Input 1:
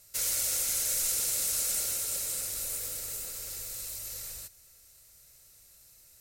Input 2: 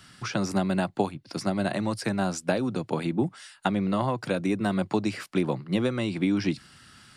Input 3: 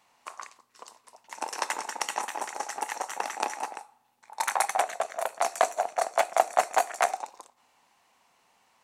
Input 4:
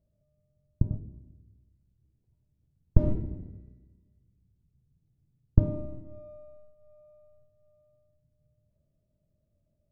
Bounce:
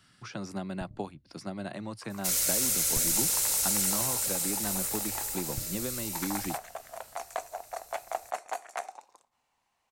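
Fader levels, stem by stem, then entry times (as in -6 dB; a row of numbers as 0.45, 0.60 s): +2.5, -10.5, -11.5, -19.0 dB; 2.10, 0.00, 1.75, 0.00 s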